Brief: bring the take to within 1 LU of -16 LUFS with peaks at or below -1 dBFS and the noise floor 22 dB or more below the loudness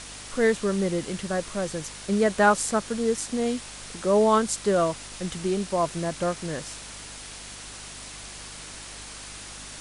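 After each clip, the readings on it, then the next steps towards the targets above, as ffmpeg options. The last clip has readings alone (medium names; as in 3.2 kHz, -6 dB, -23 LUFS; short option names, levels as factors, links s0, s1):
hum 50 Hz; highest harmonic 300 Hz; hum level -48 dBFS; noise floor -41 dBFS; noise floor target -48 dBFS; loudness -25.5 LUFS; peak level -7.5 dBFS; loudness target -16.0 LUFS
-> -af "bandreject=f=50:t=h:w=4,bandreject=f=100:t=h:w=4,bandreject=f=150:t=h:w=4,bandreject=f=200:t=h:w=4,bandreject=f=250:t=h:w=4,bandreject=f=300:t=h:w=4"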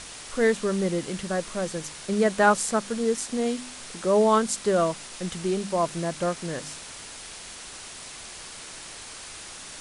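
hum not found; noise floor -42 dBFS; noise floor target -48 dBFS
-> -af "afftdn=nr=6:nf=-42"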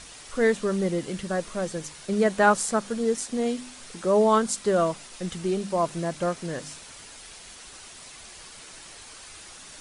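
noise floor -46 dBFS; noise floor target -48 dBFS
-> -af "afftdn=nr=6:nf=-46"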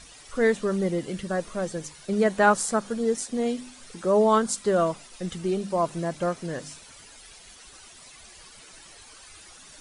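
noise floor -49 dBFS; loudness -26.0 LUFS; peak level -7.0 dBFS; loudness target -16.0 LUFS
-> -af "volume=3.16,alimiter=limit=0.891:level=0:latency=1"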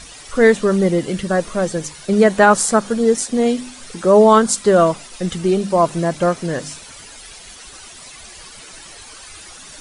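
loudness -16.0 LUFS; peak level -1.0 dBFS; noise floor -39 dBFS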